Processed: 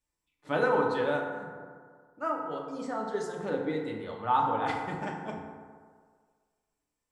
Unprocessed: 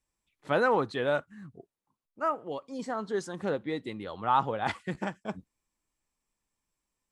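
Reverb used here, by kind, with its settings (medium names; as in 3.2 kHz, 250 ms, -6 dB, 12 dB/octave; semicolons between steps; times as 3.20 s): FDN reverb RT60 1.8 s, low-frequency decay 0.85×, high-frequency decay 0.4×, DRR -1 dB; trim -4.5 dB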